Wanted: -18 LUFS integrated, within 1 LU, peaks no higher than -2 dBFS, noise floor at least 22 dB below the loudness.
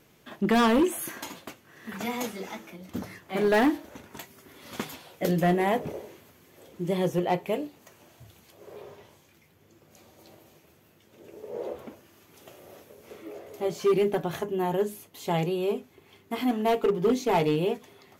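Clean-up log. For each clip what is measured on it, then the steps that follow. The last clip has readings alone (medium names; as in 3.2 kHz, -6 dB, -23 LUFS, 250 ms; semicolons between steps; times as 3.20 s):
clipped samples 1.0%; clipping level -17.5 dBFS; loudness -27.5 LUFS; peak level -17.5 dBFS; loudness target -18.0 LUFS
-> clip repair -17.5 dBFS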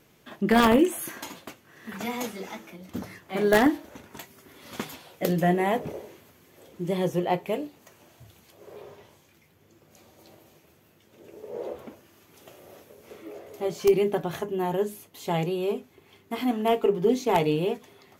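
clipped samples 0.0%; loudness -26.5 LUFS; peak level -8.5 dBFS; loudness target -18.0 LUFS
-> trim +8.5 dB; peak limiter -2 dBFS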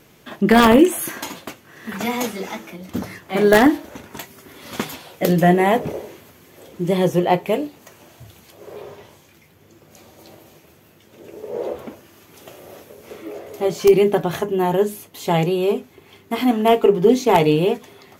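loudness -18.5 LUFS; peak level -2.0 dBFS; noise floor -52 dBFS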